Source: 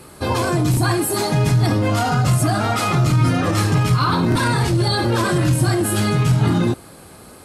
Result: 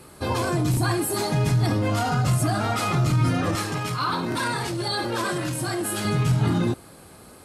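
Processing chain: 3.55–6.05 HPF 350 Hz 6 dB/oct; gain -5 dB

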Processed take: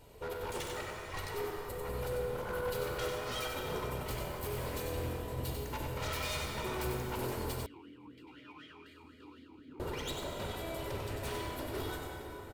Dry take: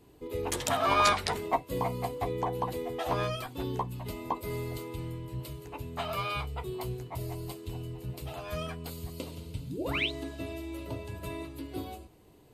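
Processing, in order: minimum comb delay 2.1 ms; reverb removal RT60 1.4 s; negative-ratio compressor -39 dBFS, ratio -0.5; flange 0.48 Hz, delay 1.3 ms, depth 1.7 ms, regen -50%; wavefolder -40 dBFS; echo 95 ms -5.5 dB; plate-style reverb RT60 4.7 s, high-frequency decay 0.55×, DRR -0.5 dB; 7.66–9.8 vowel sweep i-u 4 Hz; gain +5 dB

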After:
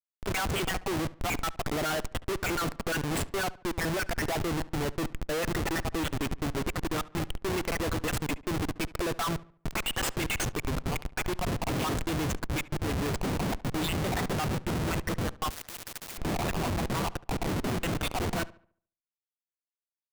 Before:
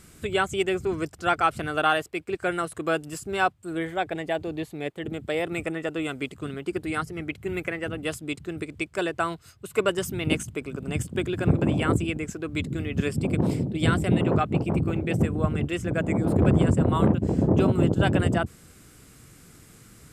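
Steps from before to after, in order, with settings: random spectral dropouts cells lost 49%; Schmitt trigger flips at -38 dBFS; on a send: darkening echo 71 ms, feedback 39%, low-pass 3100 Hz, level -19 dB; 15.5–16.18 on the sum: spectral compressor 4:1

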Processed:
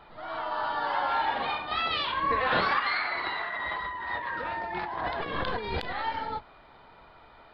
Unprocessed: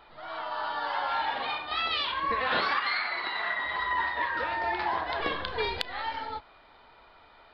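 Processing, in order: octaver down 1 oct, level -3 dB; 3.35–5.93 negative-ratio compressor -35 dBFS, ratio -1; high shelf 2300 Hz -7 dB; gain +3.5 dB

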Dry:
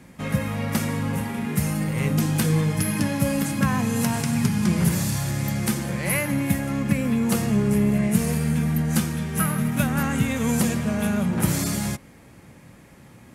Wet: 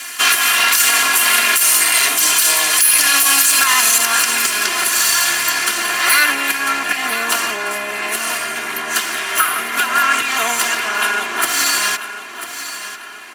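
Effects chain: minimum comb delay 0.68 ms; high shelf 3900 Hz +10.5 dB, from 3.98 s -2.5 dB, from 5.64 s -8 dB; compressor, threshold -25 dBFS, peak gain reduction 10.5 dB; HPF 1300 Hz 12 dB/oct; high shelf 10000 Hz -4.5 dB; comb 2.9 ms, depth 82%; feedback echo 0.994 s, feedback 37%, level -12 dB; maximiser +23.5 dB; gain -1 dB

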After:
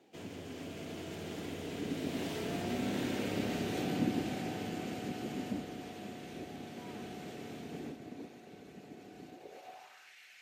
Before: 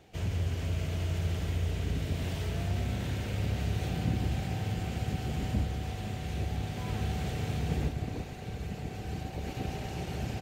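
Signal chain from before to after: Doppler pass-by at 3.27, 10 m/s, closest 13 m; high-pass sweep 270 Hz -> 2000 Hz, 9.28–10.17; gain +1 dB

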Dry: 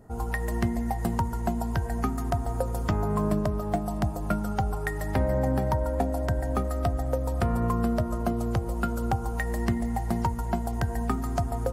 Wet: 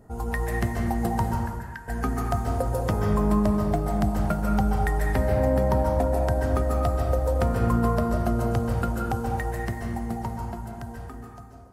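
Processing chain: ending faded out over 3.24 s; 1.35–1.88 ladder high-pass 1600 Hz, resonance 80%; plate-style reverb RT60 1.4 s, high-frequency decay 0.6×, pre-delay 0.12 s, DRR 0.5 dB

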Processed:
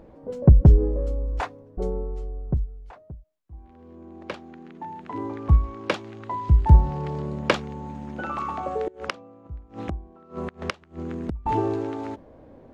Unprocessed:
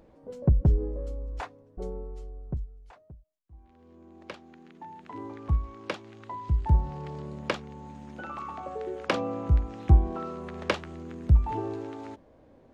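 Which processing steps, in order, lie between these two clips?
8.8–11.46 flipped gate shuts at -26 dBFS, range -24 dB; mismatched tape noise reduction decoder only; gain +8.5 dB

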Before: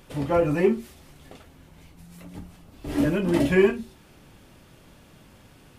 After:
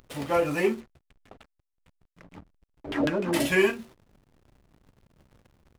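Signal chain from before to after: 0.8–3.33 LFO low-pass saw down 6.6 Hz 340–3400 Hz; tilt +3 dB/oct; backlash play -38.5 dBFS

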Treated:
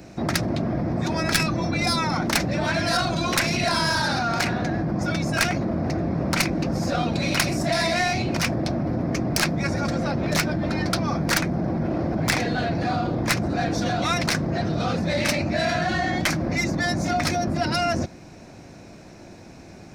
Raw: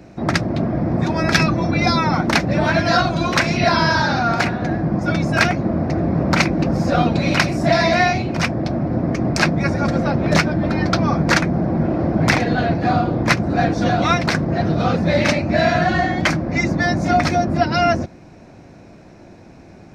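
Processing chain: tracing distortion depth 0.086 ms; in parallel at +0.5 dB: negative-ratio compressor -23 dBFS, ratio -1; on the sum: high shelf 3800 Hz +11 dB; gain -10.5 dB

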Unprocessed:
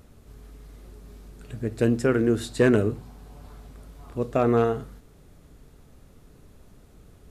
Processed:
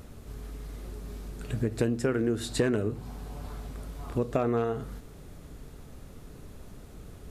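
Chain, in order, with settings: compressor 5:1, threshold -30 dBFS, peak gain reduction 14 dB; gain +5.5 dB

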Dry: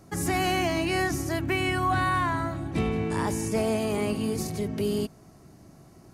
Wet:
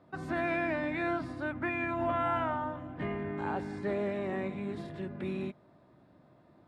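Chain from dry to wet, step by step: formant shift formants -2 st; HPF 570 Hz 6 dB/oct; air absorption 460 m; speed mistake 48 kHz file played as 44.1 kHz

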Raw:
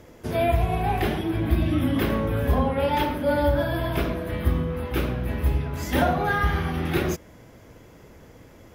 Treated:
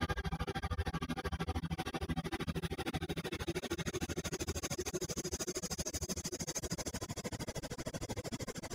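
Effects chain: reverse; compressor 5:1, threshold -38 dBFS, peak gain reduction 20 dB; reverse; notch 4100 Hz, Q 18; Paulstretch 9.4×, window 0.50 s, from 6.57; band shelf 6100 Hz +10 dB; notches 50/100 Hz; limiter -37 dBFS, peak gain reduction 12 dB; reverb removal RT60 1.1 s; grains 70 ms, grains 13/s, spray 14 ms, pitch spread up and down by 0 st; gain +13.5 dB

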